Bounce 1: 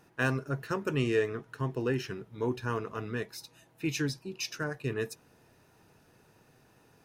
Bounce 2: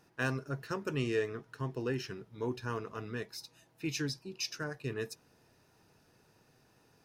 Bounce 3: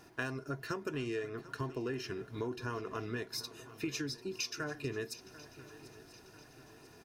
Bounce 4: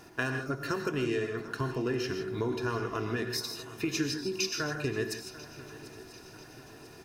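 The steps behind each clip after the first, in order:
parametric band 5,000 Hz +5.5 dB 0.64 octaves; level −4.5 dB
comb filter 2.9 ms, depth 37%; downward compressor 6 to 1, threshold −43 dBFS, peak gain reduction 15.5 dB; feedback echo with a long and a short gap by turns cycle 992 ms, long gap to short 3 to 1, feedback 50%, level −17.5 dB; level +7.5 dB
reverb whose tail is shaped and stops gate 180 ms rising, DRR 6 dB; level +5.5 dB

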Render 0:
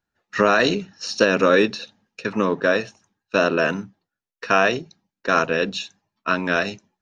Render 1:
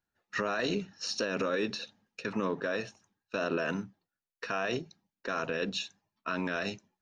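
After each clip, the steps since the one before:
brickwall limiter −15 dBFS, peak gain reduction 11 dB
level −6 dB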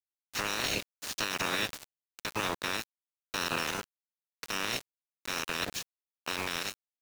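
ceiling on every frequency bin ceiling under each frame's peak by 28 dB
centre clipping without the shift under −32.5 dBFS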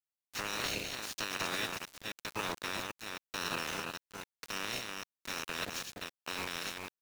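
delay that plays each chunk backwards 265 ms, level −4 dB
level −5 dB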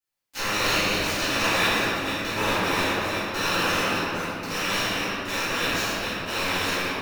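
convolution reverb RT60 3.0 s, pre-delay 4 ms, DRR −14.5 dB

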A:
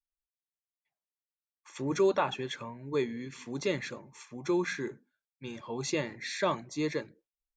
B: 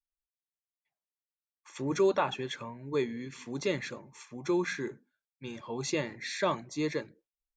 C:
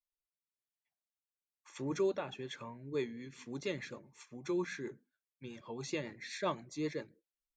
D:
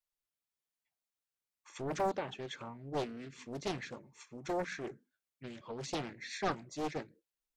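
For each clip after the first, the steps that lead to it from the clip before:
no processing that can be heard
rotating-speaker cabinet horn 1 Hz, later 7.5 Hz, at 0:02.56; level −4.5 dB
highs frequency-modulated by the lows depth 0.9 ms; level +1 dB

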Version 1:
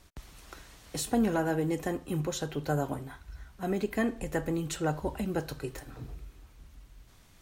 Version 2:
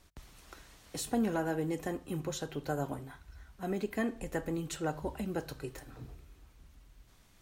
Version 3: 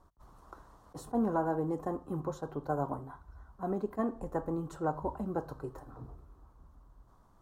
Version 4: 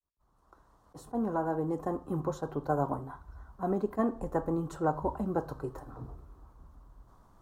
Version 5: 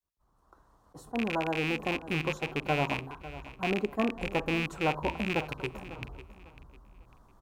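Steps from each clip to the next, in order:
mains-hum notches 50/100/150 Hz; level −4 dB
high shelf with overshoot 1,600 Hz −13.5 dB, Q 3; level that may rise only so fast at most 550 dB per second
fade in at the beginning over 2.21 s; level +3.5 dB
loose part that buzzes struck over −37 dBFS, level −21 dBFS; repeating echo 549 ms, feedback 29%, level −15.5 dB

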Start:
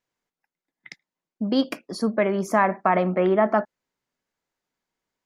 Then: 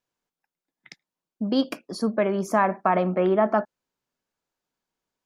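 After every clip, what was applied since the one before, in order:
parametric band 2,000 Hz −6.5 dB 0.27 octaves
level −1 dB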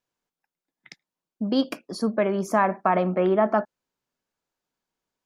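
no processing that can be heard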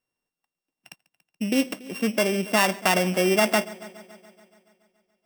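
samples sorted by size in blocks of 16 samples
echo machine with several playback heads 142 ms, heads first and second, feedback 54%, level −23 dB

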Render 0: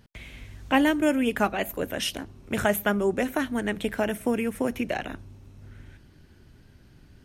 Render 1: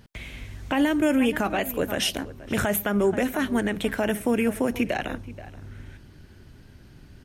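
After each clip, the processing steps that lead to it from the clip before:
slap from a distant wall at 82 metres, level −18 dB
brickwall limiter −18.5 dBFS, peak gain reduction 11 dB
level +4.5 dB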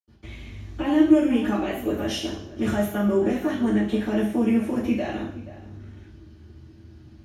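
high-shelf EQ 9,200 Hz −4 dB
convolution reverb RT60 0.60 s, pre-delay 77 ms
level −5.5 dB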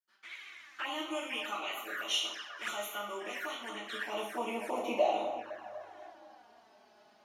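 high-pass filter sweep 1,400 Hz → 700 Hz, 0:03.67–0:04.96
feedback echo with a band-pass in the loop 249 ms, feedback 63%, band-pass 920 Hz, level −8 dB
flanger swept by the level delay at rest 5.5 ms, full sweep at −30 dBFS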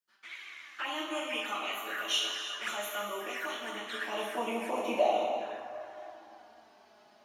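reverb whose tail is shaped and stops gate 390 ms flat, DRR 6 dB
level +1.5 dB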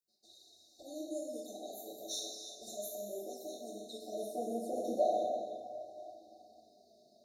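in parallel at −6 dB: soft clipping −25.5 dBFS, distortion −13 dB
on the sum: linear-phase brick-wall band-stop 770–3,600 Hz
level −5.5 dB

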